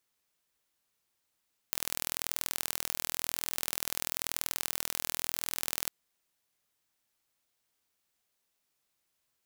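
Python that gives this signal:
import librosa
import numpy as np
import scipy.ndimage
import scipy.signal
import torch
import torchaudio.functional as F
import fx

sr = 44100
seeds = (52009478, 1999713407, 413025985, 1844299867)

y = fx.impulse_train(sr, length_s=4.15, per_s=41.0, accent_every=2, level_db=-3.5)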